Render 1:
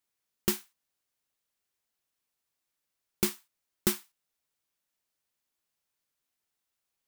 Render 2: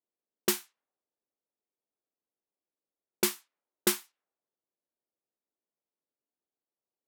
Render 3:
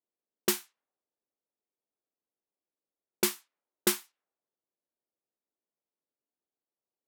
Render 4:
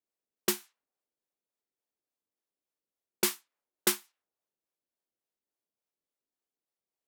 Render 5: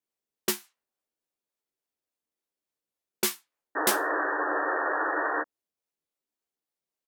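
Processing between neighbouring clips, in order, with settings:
HPF 310 Hz 12 dB/oct; low-pass opened by the level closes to 480 Hz, open at -32 dBFS; gain +4 dB
nothing audible
harmonic tremolo 3.5 Hz, depth 50%, crossover 480 Hz; gain +1 dB
painted sound noise, 3.75–5.43, 280–1900 Hz -29 dBFS; doubler 13 ms -5.5 dB

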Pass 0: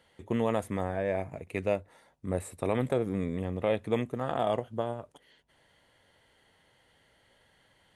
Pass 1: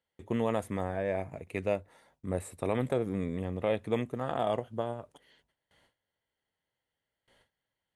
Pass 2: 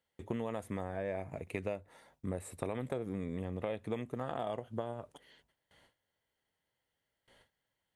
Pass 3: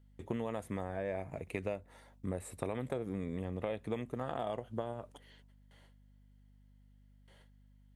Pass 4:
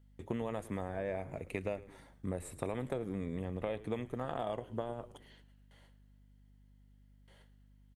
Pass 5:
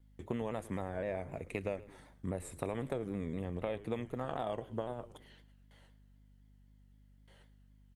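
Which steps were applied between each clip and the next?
gate with hold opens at -54 dBFS; gain -1.5 dB
compressor, threshold -35 dBFS, peak gain reduction 11.5 dB; gain +1.5 dB
hum 50 Hz, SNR 21 dB
frequency-shifting echo 0.108 s, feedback 52%, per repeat -110 Hz, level -17.5 dB
shaped vibrato saw down 3.9 Hz, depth 100 cents

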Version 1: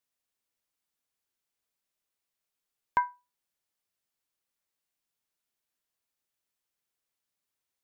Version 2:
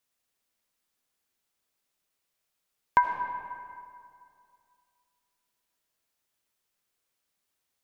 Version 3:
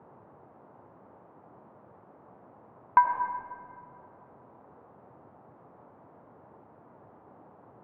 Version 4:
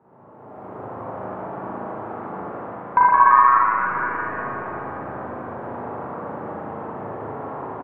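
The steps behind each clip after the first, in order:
digital reverb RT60 2.4 s, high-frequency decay 0.6×, pre-delay 40 ms, DRR 4.5 dB; gain +5 dB
LPF 1700 Hz 12 dB/oct; dynamic EQ 1000 Hz, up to +7 dB, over -38 dBFS, Q 0.84; band noise 92–1000 Hz -51 dBFS; gain -4 dB
AGC gain up to 16.5 dB; frequency-shifting echo 0.169 s, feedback 59%, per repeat +120 Hz, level -3.5 dB; spring tank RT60 2.9 s, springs 37/58 ms, chirp 60 ms, DRR -9 dB; gain -5 dB

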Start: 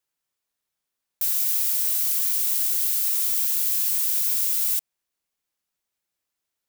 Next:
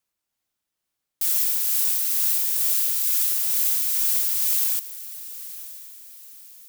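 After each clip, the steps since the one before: frequency shift -360 Hz; tremolo 2.2 Hz, depth 28%; diffused feedback echo 0.962 s, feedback 40%, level -15 dB; gain +2 dB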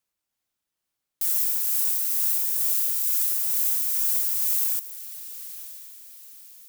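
dynamic EQ 3300 Hz, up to -6 dB, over -45 dBFS, Q 0.74; gain -1.5 dB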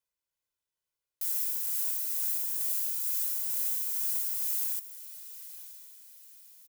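comb 2 ms, depth 58%; gain -8.5 dB

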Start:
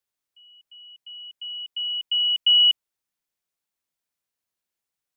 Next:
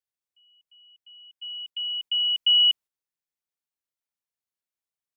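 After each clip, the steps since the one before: gate -39 dBFS, range -7 dB; gain -2 dB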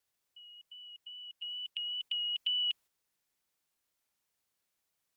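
wow and flutter 22 cents; spectral compressor 2:1; gain -5.5 dB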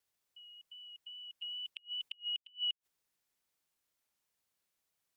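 flipped gate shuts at -26 dBFS, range -32 dB; gain -1.5 dB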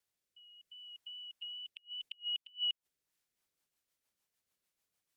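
rotary speaker horn 0.7 Hz, later 6.7 Hz, at 2.76; gain +1.5 dB

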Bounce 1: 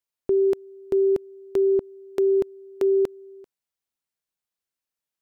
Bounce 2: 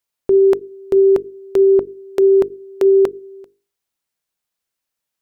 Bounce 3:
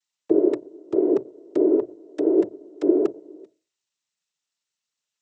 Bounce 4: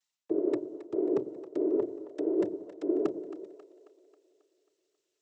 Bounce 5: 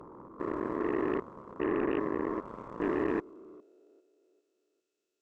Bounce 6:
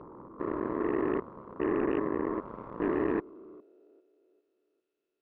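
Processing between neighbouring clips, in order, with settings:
notches 50/100/150/200/250/300/350/400/450 Hz; dynamic EQ 1100 Hz, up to +6 dB, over -39 dBFS, Q 0.76; gain +7.5 dB
noise vocoder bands 12; gain -7.5 dB
reverse; compressor 4:1, threshold -27 dBFS, peak gain reduction 13 dB; reverse; split-band echo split 410 Hz, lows 92 ms, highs 0.27 s, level -13.5 dB
stepped spectrum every 0.4 s; small resonant body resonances 230/1400/2600 Hz, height 13 dB, ringing for 55 ms; added harmonics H 3 -25 dB, 7 -14 dB, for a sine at -21 dBFS
air absorption 300 m; gain +2 dB

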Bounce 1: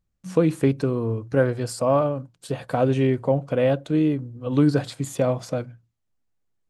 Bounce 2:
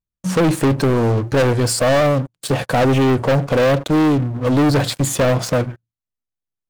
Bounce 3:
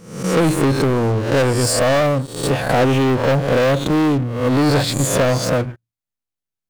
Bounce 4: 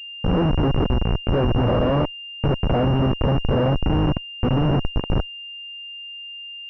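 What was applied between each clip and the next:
sample leveller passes 5; gain -3.5 dB
spectral swells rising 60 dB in 0.63 s; gain -1.5 dB
ending faded out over 2.23 s; Schmitt trigger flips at -13.5 dBFS; pulse-width modulation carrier 2800 Hz

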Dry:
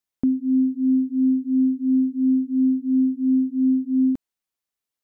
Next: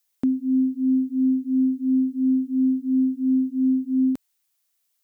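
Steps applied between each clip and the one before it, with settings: tilt +3 dB/oct; gain +4.5 dB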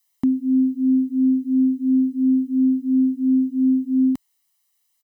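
comb 1 ms, depth 99%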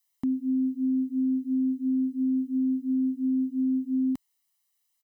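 limiter -15.5 dBFS, peak gain reduction 3 dB; gain -6 dB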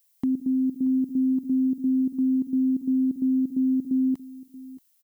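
level quantiser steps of 14 dB; added noise violet -71 dBFS; echo 0.63 s -18 dB; gain +5.5 dB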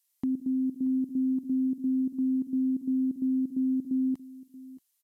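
gain -4.5 dB; Vorbis 128 kbps 32000 Hz

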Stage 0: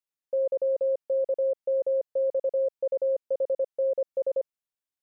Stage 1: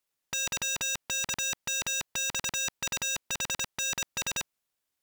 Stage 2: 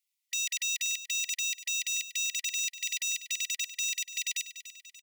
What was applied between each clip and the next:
sine folder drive 19 dB, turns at -21 dBFS; sample leveller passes 3; gain -8 dB
brick-wall FIR high-pass 1900 Hz; feedback echo 0.291 s, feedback 49%, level -13 dB

